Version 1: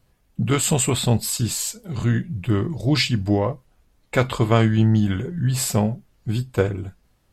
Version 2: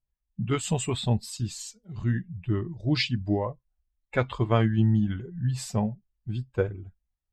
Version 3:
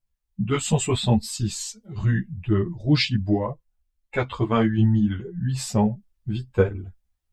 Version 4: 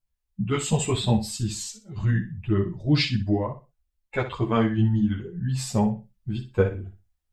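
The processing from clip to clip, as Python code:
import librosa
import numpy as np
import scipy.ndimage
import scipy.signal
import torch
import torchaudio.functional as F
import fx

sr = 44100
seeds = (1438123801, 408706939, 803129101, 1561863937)

y1 = fx.bin_expand(x, sr, power=1.5)
y1 = scipy.signal.sosfilt(scipy.signal.butter(2, 5700.0, 'lowpass', fs=sr, output='sos'), y1)
y1 = y1 * librosa.db_to_amplitude(-4.0)
y2 = fx.rider(y1, sr, range_db=10, speed_s=2.0)
y2 = fx.ensemble(y2, sr)
y2 = y2 * librosa.db_to_amplitude(7.5)
y3 = fx.echo_feedback(y2, sr, ms=61, feedback_pct=23, wet_db=-11.0)
y3 = y3 * librosa.db_to_amplitude(-2.0)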